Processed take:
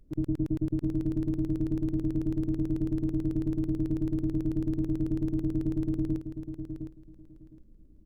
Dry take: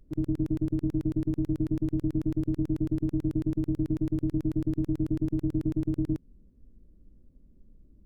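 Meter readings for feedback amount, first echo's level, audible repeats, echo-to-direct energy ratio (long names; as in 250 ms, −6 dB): 18%, −8.5 dB, 2, −8.5 dB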